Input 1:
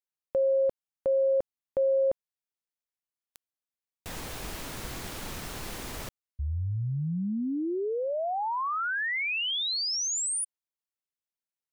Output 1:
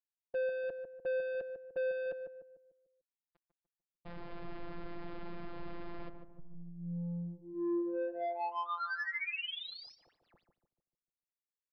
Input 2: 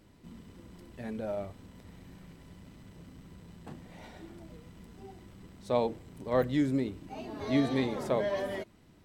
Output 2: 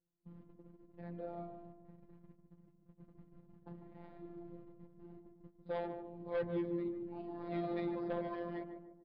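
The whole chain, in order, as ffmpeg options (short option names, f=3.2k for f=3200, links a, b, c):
-filter_complex "[0:a]agate=range=-25dB:threshold=-47dB:ratio=16:release=257:detection=rms,afftfilt=real='hypot(re,im)*cos(PI*b)':imag='0':win_size=1024:overlap=0.75,acrossover=split=2600[a][b];[a]asoftclip=type=tanh:threshold=-29.5dB[c];[c][b]amix=inputs=2:normalize=0,adynamicsmooth=sensitivity=3.5:basefreq=1.1k,asplit=2[d][e];[e]adelay=148,lowpass=f=980:p=1,volume=-5.5dB,asplit=2[f][g];[g]adelay=148,lowpass=f=980:p=1,volume=0.47,asplit=2[h][i];[i]adelay=148,lowpass=f=980:p=1,volume=0.47,asplit=2[j][k];[k]adelay=148,lowpass=f=980:p=1,volume=0.47,asplit=2[l][m];[m]adelay=148,lowpass=f=980:p=1,volume=0.47,asplit=2[n][o];[o]adelay=148,lowpass=f=980:p=1,volume=0.47[p];[d][f][h][j][l][n][p]amix=inputs=7:normalize=0,aresample=11025,aresample=44100,volume=-1dB"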